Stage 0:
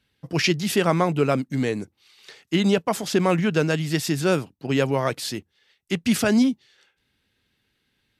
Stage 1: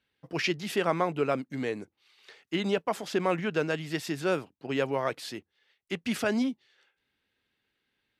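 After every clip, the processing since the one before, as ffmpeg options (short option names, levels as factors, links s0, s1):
-af "bass=f=250:g=-9,treble=f=4000:g=-8,volume=0.562"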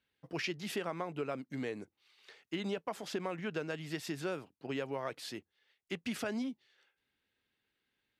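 -af "acompressor=threshold=0.0355:ratio=5,volume=0.596"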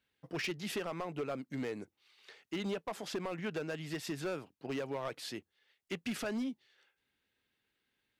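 -af "volume=42.2,asoftclip=hard,volume=0.0237,volume=1.12"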